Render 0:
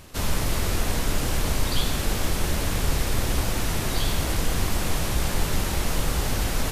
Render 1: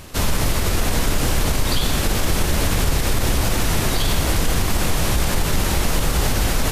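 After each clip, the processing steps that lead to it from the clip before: limiter -16.5 dBFS, peak gain reduction 6.5 dB; gain +7.5 dB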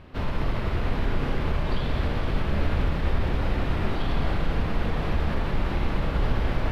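air absorption 390 m; Schroeder reverb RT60 2.9 s, combs from 27 ms, DRR 1.5 dB; gain -7 dB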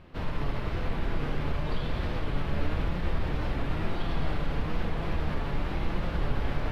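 flange 1 Hz, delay 5.6 ms, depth 1.6 ms, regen +67%; record warp 45 rpm, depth 100 cents

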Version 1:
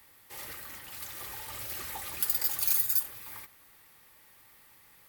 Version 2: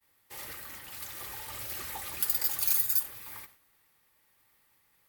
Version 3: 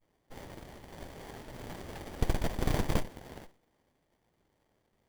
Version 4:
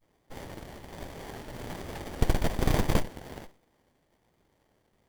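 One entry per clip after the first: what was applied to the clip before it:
expander -50 dBFS
running maximum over 33 samples
vibrato 1.2 Hz 30 cents; gain +4.5 dB

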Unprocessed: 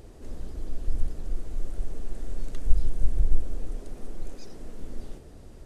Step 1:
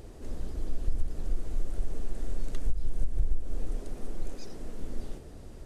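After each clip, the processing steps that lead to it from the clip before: compressor 12:1, threshold -19 dBFS, peak gain reduction 12.5 dB; gain +1 dB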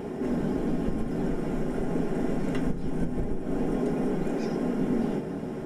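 reverb RT60 0.30 s, pre-delay 3 ms, DRR -5 dB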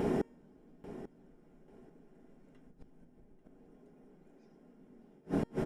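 flipped gate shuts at -23 dBFS, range -36 dB; resonator 460 Hz, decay 0.7 s, mix 40%; feedback echo 0.841 s, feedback 22%, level -14.5 dB; gain +7.5 dB

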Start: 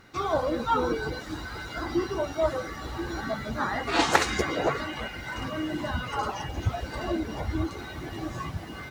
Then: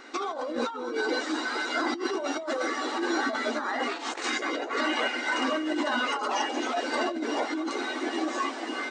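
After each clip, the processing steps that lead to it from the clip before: FFT band-pass 230–9100 Hz; negative-ratio compressor -34 dBFS, ratio -1; gain +4.5 dB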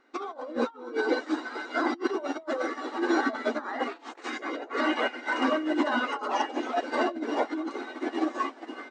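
high shelf 2900 Hz -11.5 dB; upward expander 2.5:1, over -40 dBFS; gain +5.5 dB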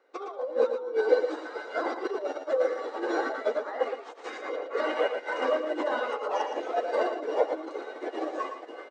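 resonant high-pass 490 Hz, resonance Q 4.9; on a send: echo 0.114 s -7.5 dB; on the sum: gain -6 dB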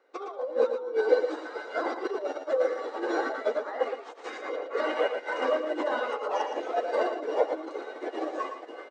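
nothing audible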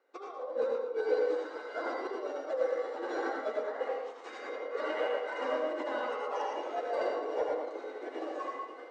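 soft clip -12.5 dBFS, distortion -24 dB; reverb RT60 0.55 s, pre-delay 73 ms, DRR 0.5 dB; gain -7.5 dB

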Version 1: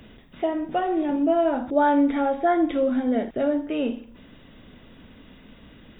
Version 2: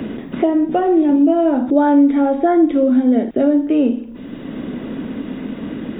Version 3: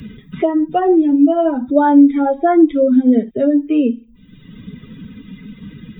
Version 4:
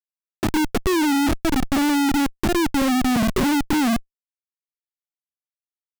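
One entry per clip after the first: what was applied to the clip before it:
bell 290 Hz +11 dB 1.7 oct; three-band squash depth 70%
per-bin expansion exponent 2; gain +5 dB
Chebyshev band-pass 150–1900 Hz, order 5; auto-wah 220–1400 Hz, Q 5.7, down, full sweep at -13 dBFS; Schmitt trigger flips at -29.5 dBFS; gain +6.5 dB

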